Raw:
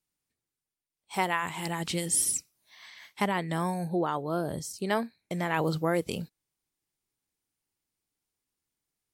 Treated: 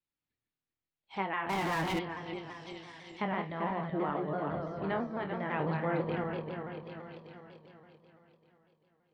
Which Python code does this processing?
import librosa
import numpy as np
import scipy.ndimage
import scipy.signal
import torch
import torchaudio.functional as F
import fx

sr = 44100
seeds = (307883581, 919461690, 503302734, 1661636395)

p1 = fx.reverse_delay_fb(x, sr, ms=195, feedback_pct=73, wet_db=-4)
p2 = scipy.signal.sosfilt(scipy.signal.butter(4, 4000.0, 'lowpass', fs=sr, output='sos'), p1)
p3 = fx.env_lowpass_down(p2, sr, base_hz=2500.0, full_db=-31.0)
p4 = p3 + fx.room_flutter(p3, sr, wall_m=4.5, rt60_s=0.21, dry=0)
p5 = fx.power_curve(p4, sr, exponent=0.5, at=(1.49, 1.99))
p6 = fx.vibrato_shape(p5, sr, shape='saw_down', rate_hz=6.0, depth_cents=100.0)
y = p6 * librosa.db_to_amplitude(-6.5)